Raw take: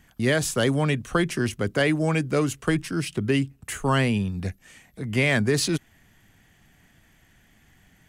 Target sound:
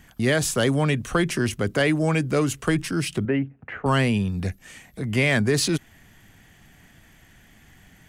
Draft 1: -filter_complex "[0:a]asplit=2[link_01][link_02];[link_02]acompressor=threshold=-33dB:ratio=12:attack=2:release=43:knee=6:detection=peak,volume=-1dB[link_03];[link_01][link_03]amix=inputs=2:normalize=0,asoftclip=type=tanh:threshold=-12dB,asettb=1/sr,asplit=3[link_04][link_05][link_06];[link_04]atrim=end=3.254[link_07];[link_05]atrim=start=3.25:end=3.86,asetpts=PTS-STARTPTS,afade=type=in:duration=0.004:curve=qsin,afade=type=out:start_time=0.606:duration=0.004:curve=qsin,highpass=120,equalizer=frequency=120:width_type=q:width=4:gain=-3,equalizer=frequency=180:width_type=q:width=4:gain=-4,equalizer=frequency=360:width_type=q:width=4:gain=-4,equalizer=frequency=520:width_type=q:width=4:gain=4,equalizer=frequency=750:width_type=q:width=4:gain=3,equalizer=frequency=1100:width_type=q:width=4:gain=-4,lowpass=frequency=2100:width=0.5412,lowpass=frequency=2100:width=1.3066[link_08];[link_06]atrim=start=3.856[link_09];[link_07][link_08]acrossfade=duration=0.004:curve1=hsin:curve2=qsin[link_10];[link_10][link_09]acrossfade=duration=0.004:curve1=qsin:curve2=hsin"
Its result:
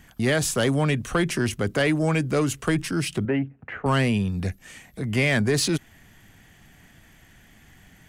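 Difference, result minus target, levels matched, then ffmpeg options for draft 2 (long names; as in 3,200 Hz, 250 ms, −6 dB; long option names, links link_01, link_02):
soft clipping: distortion +12 dB
-filter_complex "[0:a]asplit=2[link_01][link_02];[link_02]acompressor=threshold=-33dB:ratio=12:attack=2:release=43:knee=6:detection=peak,volume=-1dB[link_03];[link_01][link_03]amix=inputs=2:normalize=0,asoftclip=type=tanh:threshold=-5dB,asettb=1/sr,asplit=3[link_04][link_05][link_06];[link_04]atrim=end=3.254[link_07];[link_05]atrim=start=3.25:end=3.86,asetpts=PTS-STARTPTS,afade=type=in:duration=0.004:curve=qsin,afade=type=out:start_time=0.606:duration=0.004:curve=qsin,highpass=120,equalizer=frequency=120:width_type=q:width=4:gain=-3,equalizer=frequency=180:width_type=q:width=4:gain=-4,equalizer=frequency=360:width_type=q:width=4:gain=-4,equalizer=frequency=520:width_type=q:width=4:gain=4,equalizer=frequency=750:width_type=q:width=4:gain=3,equalizer=frequency=1100:width_type=q:width=4:gain=-4,lowpass=frequency=2100:width=0.5412,lowpass=frequency=2100:width=1.3066[link_08];[link_06]atrim=start=3.856[link_09];[link_07][link_08]acrossfade=duration=0.004:curve1=hsin:curve2=qsin[link_10];[link_10][link_09]acrossfade=duration=0.004:curve1=qsin:curve2=hsin"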